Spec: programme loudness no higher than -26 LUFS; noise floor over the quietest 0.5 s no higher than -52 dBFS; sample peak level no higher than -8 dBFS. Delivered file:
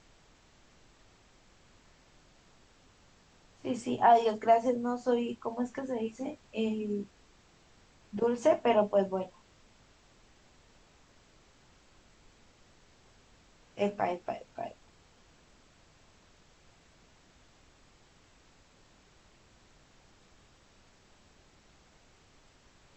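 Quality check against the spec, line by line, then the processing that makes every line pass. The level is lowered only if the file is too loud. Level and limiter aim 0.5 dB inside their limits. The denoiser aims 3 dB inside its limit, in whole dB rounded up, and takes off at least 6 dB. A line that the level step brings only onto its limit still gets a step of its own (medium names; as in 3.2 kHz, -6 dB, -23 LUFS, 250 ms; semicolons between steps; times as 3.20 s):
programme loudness -30.5 LUFS: pass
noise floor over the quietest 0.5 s -62 dBFS: pass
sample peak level -11.5 dBFS: pass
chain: none needed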